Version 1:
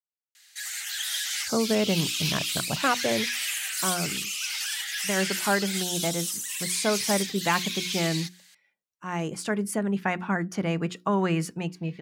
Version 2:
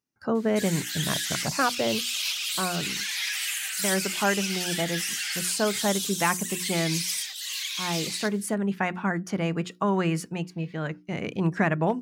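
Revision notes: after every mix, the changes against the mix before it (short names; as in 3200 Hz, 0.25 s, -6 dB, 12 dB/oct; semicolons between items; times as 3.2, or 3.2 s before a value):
speech: entry -1.25 s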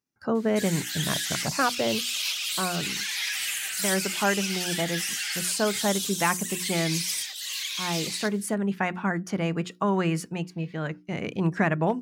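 background: remove HPF 790 Hz 12 dB/oct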